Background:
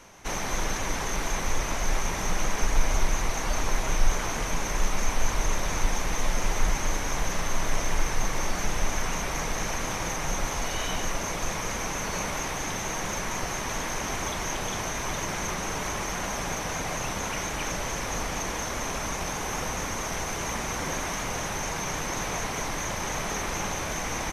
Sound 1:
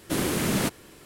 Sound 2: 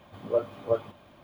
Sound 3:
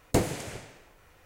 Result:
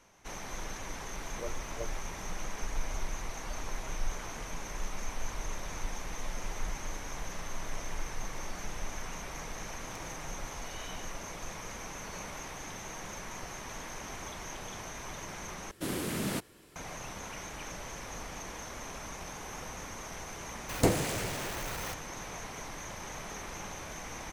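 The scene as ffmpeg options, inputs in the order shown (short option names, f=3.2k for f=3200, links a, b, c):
-filter_complex "[3:a]asplit=2[a][b];[0:a]volume=-11.5dB[c];[2:a]equalizer=f=640:w=1.5:g=-8[d];[a]acompressor=threshold=-30dB:ratio=6:attack=3.2:release=140:knee=1:detection=peak[e];[1:a]acontrast=86[f];[b]aeval=exprs='val(0)+0.5*0.0266*sgn(val(0))':c=same[g];[c]asplit=2[h][i];[h]atrim=end=15.714[j];[f]atrim=end=1.05,asetpts=PTS-STARTPTS,volume=-15.5dB[k];[i]atrim=start=16.756[l];[d]atrim=end=1.23,asetpts=PTS-STARTPTS,volume=-10dB,afade=t=in:d=0.004:c=hsin,afade=t=out:st=1.226:d=0.004:c=hsin,adelay=1090[m];[e]atrim=end=1.25,asetpts=PTS-STARTPTS,volume=-17.5dB,afade=t=in:d=0.004:c=hsin,afade=t=out:st=1.246:d=0.004:c=hsin,adelay=9810[n];[g]atrim=end=1.25,asetpts=PTS-STARTPTS,volume=-2dB,afade=t=in:d=0.004:c=hsin,afade=t=out:st=1.246:d=0.004:c=hsin,adelay=20690[o];[j][k]acrossfade=d=0.004:c1=hsin:c2=hsin[p];[p][l]acrossfade=d=0.004:c1=hsin:c2=hsin[q];[q][m][n][o]amix=inputs=4:normalize=0"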